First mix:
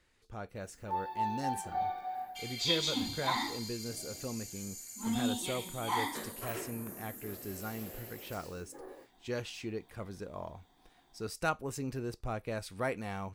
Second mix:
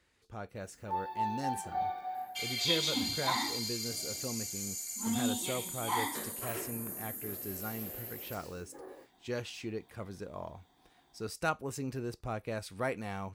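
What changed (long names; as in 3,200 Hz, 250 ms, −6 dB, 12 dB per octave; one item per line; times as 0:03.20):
speech: add high-pass filter 50 Hz
second sound +7.0 dB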